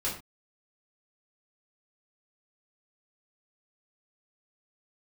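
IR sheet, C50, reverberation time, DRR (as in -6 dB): 6.5 dB, not exponential, -7.5 dB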